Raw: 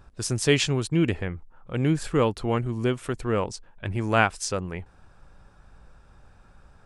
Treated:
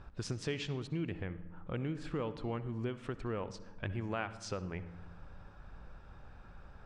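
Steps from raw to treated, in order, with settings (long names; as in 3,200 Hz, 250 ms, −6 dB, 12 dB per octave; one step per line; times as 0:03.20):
low-pass filter 4,100 Hz 12 dB per octave
downward compressor 4 to 1, threshold −37 dBFS, peak gain reduction 18.5 dB
on a send: convolution reverb RT60 1.1 s, pre-delay 58 ms, DRR 13.5 dB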